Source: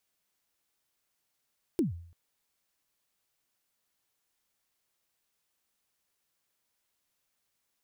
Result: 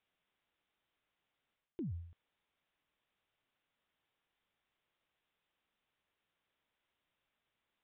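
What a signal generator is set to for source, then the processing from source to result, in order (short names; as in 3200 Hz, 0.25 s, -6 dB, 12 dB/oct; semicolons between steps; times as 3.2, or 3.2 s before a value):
kick drum length 0.34 s, from 380 Hz, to 85 Hz, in 0.136 s, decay 0.58 s, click on, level -21 dB
reverse; compressor 12:1, threshold -39 dBFS; reverse; downsampling 8000 Hz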